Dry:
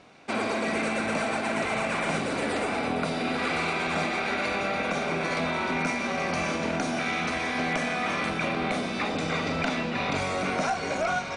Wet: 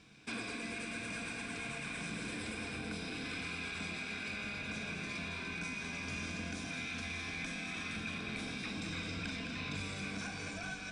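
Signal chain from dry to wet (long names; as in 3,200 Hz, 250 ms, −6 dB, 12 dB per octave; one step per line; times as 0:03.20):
EQ curve with evenly spaced ripples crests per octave 1.7, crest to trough 7 dB
on a send: delay that swaps between a low-pass and a high-pass 110 ms, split 860 Hz, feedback 73%, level −4 dB
on the sum: speech leveller 0.5 s
guitar amp tone stack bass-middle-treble 6-0-2
in parallel at −0.5 dB: brickwall limiter −40.5 dBFS, peak gain reduction 8.5 dB
on the sum: wrong playback speed 24 fps film run at 25 fps
level +1 dB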